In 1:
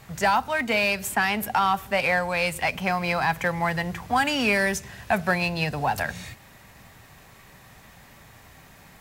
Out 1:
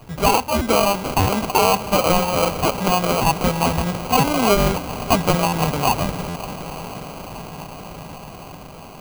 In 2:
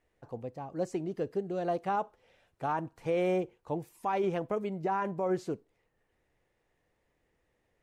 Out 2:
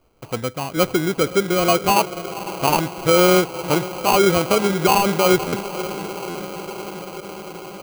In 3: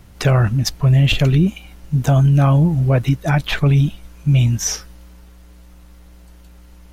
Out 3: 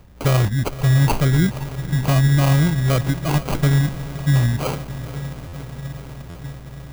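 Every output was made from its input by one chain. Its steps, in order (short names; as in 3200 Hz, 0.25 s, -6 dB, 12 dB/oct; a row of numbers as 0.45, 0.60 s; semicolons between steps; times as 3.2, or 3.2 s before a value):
diffused feedback echo 0.515 s, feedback 78%, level -14 dB; sample-rate reducer 1800 Hz, jitter 0%; stuck buffer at 5.47/6.29, samples 512, times 4; match loudness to -19 LUFS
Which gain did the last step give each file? +5.5, +14.5, -2.5 dB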